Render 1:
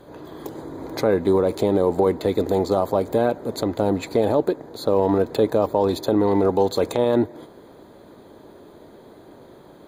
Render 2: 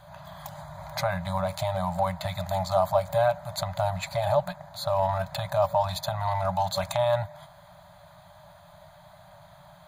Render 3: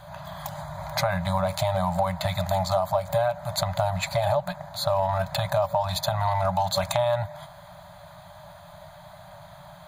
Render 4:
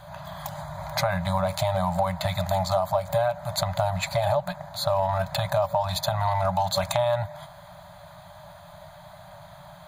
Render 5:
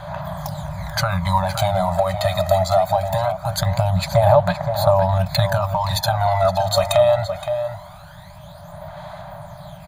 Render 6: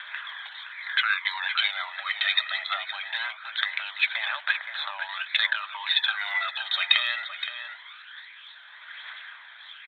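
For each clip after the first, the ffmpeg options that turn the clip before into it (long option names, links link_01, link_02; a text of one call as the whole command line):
ffmpeg -i in.wav -af "afftfilt=real='re*(1-between(b*sr/4096,190,560))':imag='im*(1-between(b*sr/4096,190,560))':win_size=4096:overlap=0.75" out.wav
ffmpeg -i in.wav -af "acompressor=threshold=-25dB:ratio=10,volume=5.5dB" out.wav
ffmpeg -i in.wav -af anull out.wav
ffmpeg -i in.wav -filter_complex "[0:a]aphaser=in_gain=1:out_gain=1:delay=1.6:decay=0.63:speed=0.22:type=sinusoidal,asplit=2[link_01][link_02];[link_02]adelay=519,volume=-8dB,highshelf=frequency=4000:gain=-11.7[link_03];[link_01][link_03]amix=inputs=2:normalize=0,volume=3dB" out.wav
ffmpeg -i in.wav -af "asuperpass=centerf=3000:order=8:qfactor=0.77,aresample=8000,aresample=44100,aphaser=in_gain=1:out_gain=1:delay=1.4:decay=0.34:speed=1.1:type=triangular,volume=8.5dB" out.wav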